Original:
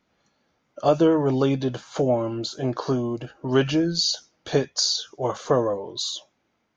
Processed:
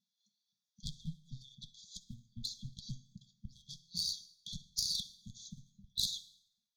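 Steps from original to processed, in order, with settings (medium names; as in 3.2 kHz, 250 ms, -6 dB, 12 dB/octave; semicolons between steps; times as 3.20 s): in parallel at -3 dB: hard clipper -18.5 dBFS, distortion -10 dB; on the sum: compression 5:1, threshold -22 dBFS, peak gain reduction 10.5 dB; LFO high-pass saw up 3.8 Hz 230–3400 Hz; comb of notches 540 Hz; Chebyshev shaper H 2 -7 dB, 3 -13 dB, 4 -8 dB, 6 -18 dB, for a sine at -10 dBFS; brick-wall FIR band-stop 220–3200 Hz; reverberation RT60 0.70 s, pre-delay 47 ms, DRR 16 dB; trim -2.5 dB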